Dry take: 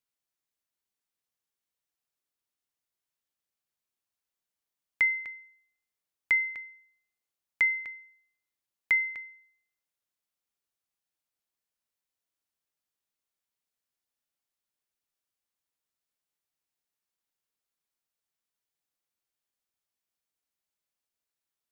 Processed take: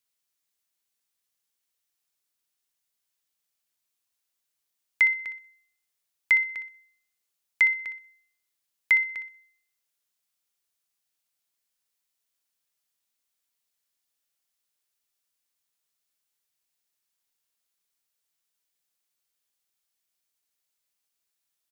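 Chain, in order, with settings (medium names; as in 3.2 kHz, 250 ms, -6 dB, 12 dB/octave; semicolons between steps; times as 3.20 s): treble shelf 2 kHz +8.5 dB; hum notches 50/100/150/200/250/300/350 Hz; feedback delay 62 ms, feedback 24%, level -10 dB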